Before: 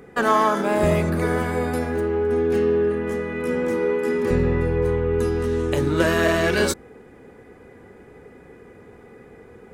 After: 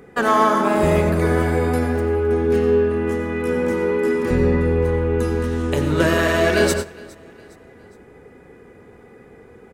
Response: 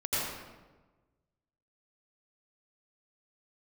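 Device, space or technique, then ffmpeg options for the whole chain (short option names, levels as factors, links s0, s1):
keyed gated reverb: -filter_complex "[0:a]aecho=1:1:411|822|1233:0.0794|0.0365|0.0168,asplit=3[s0][s1][s2];[1:a]atrim=start_sample=2205[s3];[s1][s3]afir=irnorm=-1:irlink=0[s4];[s2]apad=whole_len=483607[s5];[s4][s5]sidechaingate=range=0.158:threshold=0.0251:ratio=16:detection=peak,volume=0.237[s6];[s0][s6]amix=inputs=2:normalize=0"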